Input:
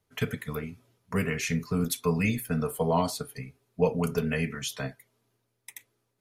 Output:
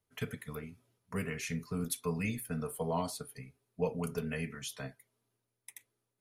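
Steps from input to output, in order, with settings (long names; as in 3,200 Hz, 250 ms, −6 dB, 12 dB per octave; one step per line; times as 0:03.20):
parametric band 10,000 Hz +6.5 dB 0.3 octaves
level −8.5 dB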